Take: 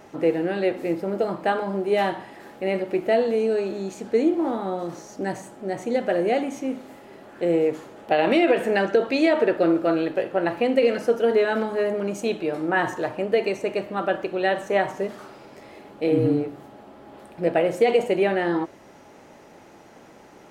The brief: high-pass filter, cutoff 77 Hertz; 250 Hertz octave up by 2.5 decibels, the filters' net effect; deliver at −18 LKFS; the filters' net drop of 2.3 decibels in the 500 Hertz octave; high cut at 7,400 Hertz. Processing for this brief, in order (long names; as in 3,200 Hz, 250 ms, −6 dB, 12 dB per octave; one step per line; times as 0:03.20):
high-pass filter 77 Hz
low-pass filter 7,400 Hz
parametric band 250 Hz +5.5 dB
parametric band 500 Hz −4.5 dB
level +6 dB